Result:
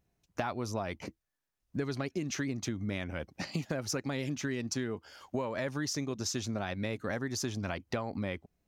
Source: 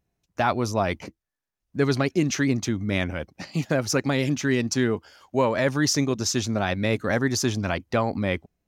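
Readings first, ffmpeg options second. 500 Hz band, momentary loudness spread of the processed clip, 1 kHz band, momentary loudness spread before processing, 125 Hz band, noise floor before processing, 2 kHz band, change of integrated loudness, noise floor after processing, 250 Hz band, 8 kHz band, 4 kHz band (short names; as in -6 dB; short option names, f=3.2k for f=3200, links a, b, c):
-11.5 dB, 5 LU, -12.0 dB, 8 LU, -10.5 dB, -85 dBFS, -11.5 dB, -11.0 dB, -85 dBFS, -11.0 dB, -9.5 dB, -10.0 dB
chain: -af "acompressor=threshold=-31dB:ratio=10"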